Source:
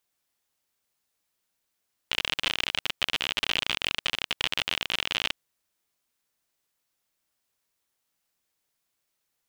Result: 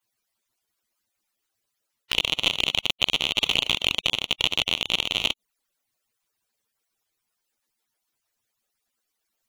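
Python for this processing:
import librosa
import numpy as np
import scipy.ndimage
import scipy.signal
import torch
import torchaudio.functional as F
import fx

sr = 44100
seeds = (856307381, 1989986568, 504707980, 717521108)

y = fx.hpss_only(x, sr, part='percussive')
y = fx.env_flanger(y, sr, rest_ms=9.0, full_db=-32.0)
y = y * 10.0 ** (7.5 / 20.0)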